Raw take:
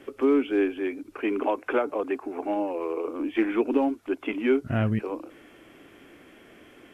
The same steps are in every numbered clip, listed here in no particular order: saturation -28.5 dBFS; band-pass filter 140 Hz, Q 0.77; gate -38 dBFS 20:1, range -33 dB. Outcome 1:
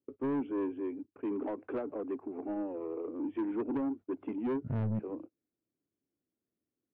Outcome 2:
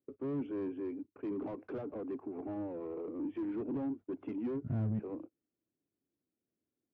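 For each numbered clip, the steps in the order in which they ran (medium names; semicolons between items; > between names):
gate > band-pass filter > saturation; gate > saturation > band-pass filter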